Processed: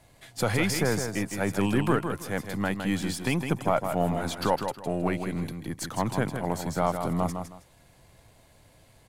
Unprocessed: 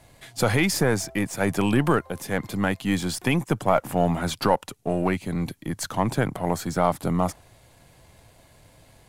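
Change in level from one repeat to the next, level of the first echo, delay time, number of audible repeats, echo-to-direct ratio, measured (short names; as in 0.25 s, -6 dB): -12.5 dB, -7.0 dB, 0.159 s, 2, -7.0 dB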